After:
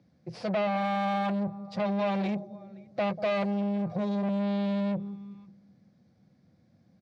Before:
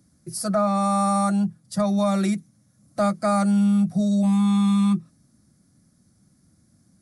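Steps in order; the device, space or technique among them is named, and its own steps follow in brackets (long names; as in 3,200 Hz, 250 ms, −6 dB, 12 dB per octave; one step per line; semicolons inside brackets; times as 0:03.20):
0:03.10–0:04.29: comb filter 1.8 ms, depth 63%
slap from a distant wall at 90 metres, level −27 dB
analogue delay pedal into a guitar amplifier (bucket-brigade delay 190 ms, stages 1,024, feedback 50%, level −19.5 dB; tube saturation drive 27 dB, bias 0.45; loudspeaker in its box 100–4,100 Hz, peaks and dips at 290 Hz −4 dB, 500 Hz +8 dB, 760 Hz +5 dB, 1,300 Hz −6 dB, 2,400 Hz +4 dB)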